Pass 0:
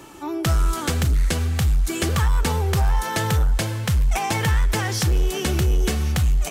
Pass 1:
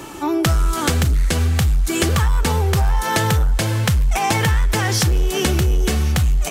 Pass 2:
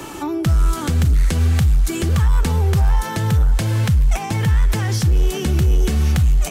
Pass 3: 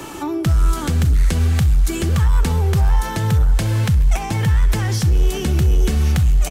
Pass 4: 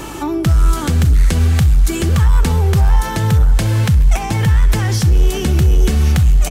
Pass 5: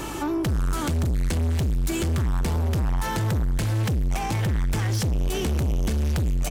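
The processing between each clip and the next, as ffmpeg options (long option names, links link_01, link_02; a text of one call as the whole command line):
ffmpeg -i in.wav -af "acompressor=threshold=-24dB:ratio=4,volume=9dB" out.wav
ffmpeg -i in.wav -filter_complex "[0:a]acrossover=split=260[link_01][link_02];[link_02]acompressor=threshold=-28dB:ratio=6[link_03];[link_01][link_03]amix=inputs=2:normalize=0,volume=2dB" out.wav
ffmpeg -i in.wav -af "aecho=1:1:66|132|198|264:0.106|0.0583|0.032|0.0176" out.wav
ffmpeg -i in.wav -af "aeval=exprs='val(0)+0.0141*(sin(2*PI*50*n/s)+sin(2*PI*2*50*n/s)/2+sin(2*PI*3*50*n/s)/3+sin(2*PI*4*50*n/s)/4+sin(2*PI*5*50*n/s)/5)':channel_layout=same,volume=3.5dB" out.wav
ffmpeg -i in.wav -af "asoftclip=type=tanh:threshold=-18dB,volume=-3dB" out.wav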